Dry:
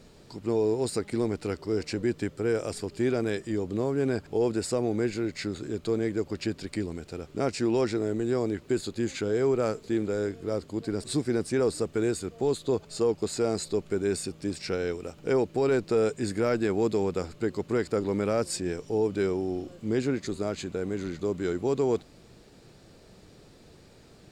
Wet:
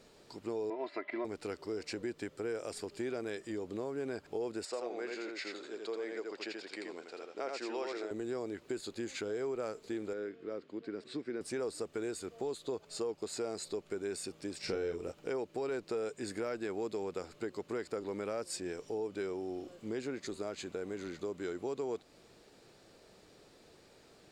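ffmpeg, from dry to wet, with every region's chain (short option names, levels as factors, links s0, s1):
-filter_complex "[0:a]asettb=1/sr,asplit=3[s0][s1][s2];[s0]atrim=end=0.704[s3];[s1]atrim=start=0.7:end=1.25,asetpts=PTS-STARTPTS,afade=t=in:d=0.004:c=qsin,afade=t=out:st=0.546:d=0.004:c=qsin,highpass=300,equalizer=f=430:t=q:w=4:g=-7,equalizer=f=610:t=q:w=4:g=8,equalizer=f=1000:t=q:w=4:g=5,equalizer=f=2000:t=q:w=4:g=9,lowpass=f=3100:w=0.5412,lowpass=f=3100:w=1.3066,aecho=1:1:3:0.79,atrim=end_sample=24255[s4];[s2]atrim=start=1.246[s5];[s3][s4]acrossfade=d=0.004:c1=hsin:c2=qsin[s6];[s6][s5]acrossfade=d=0.004:c1=qsin:c2=hsin,asettb=1/sr,asplit=3[s7][s8][s9];[s7]atrim=end=4.654[s10];[s8]atrim=start=4.65:end=8.11,asetpts=PTS-STARTPTS,afade=t=in:d=0.004:c=qsin,afade=t=out:st=3.456:d=0.004:c=qsin,highpass=470,lowpass=5400,aecho=1:1:83:0.668,atrim=end_sample=152586[s11];[s9]atrim=start=8.106[s12];[s10][s11]acrossfade=d=0.004:c1=hsin:c2=qsin[s13];[s13][s12]acrossfade=d=0.004:c1=qsin:c2=hsin,asettb=1/sr,asplit=3[s14][s15][s16];[s14]atrim=end=10.134[s17];[s15]atrim=start=10.13:end=11.41,asetpts=PTS-STARTPTS,afade=t=in:d=0.004:c=qsin,afade=t=out:st=1.276:d=0.004:c=qsin,highpass=190,lowpass=2700,equalizer=f=790:t=o:w=1.1:g=-9[s18];[s16]atrim=start=11.406[s19];[s17][s18]acrossfade=d=0.004:c1=hsin:c2=qsin[s20];[s20][s19]acrossfade=d=0.004:c1=qsin:c2=hsin,asettb=1/sr,asplit=3[s21][s22][s23];[s21]atrim=end=14.634[s24];[s22]atrim=start=14.63:end=15.12,asetpts=PTS-STARTPTS,afade=t=in:d=0.004:c=qsin,afade=t=out:st=0.486:d=0.004:c=qsin,lowshelf=f=490:g=9.5,asplit=2[s25][s26];[s26]adelay=36,volume=0.531[s27];[s25][s27]amix=inputs=2:normalize=0,atrim=end_sample=21609[s28];[s23]atrim=start=15.116[s29];[s24][s28]acrossfade=d=0.004:c1=hsin:c2=qsin[s30];[s30][s29]acrossfade=d=0.004:c1=qsin:c2=hsin,bass=f=250:g=-11,treble=f=4000:g=-1,acompressor=threshold=0.0224:ratio=2.5,volume=0.668"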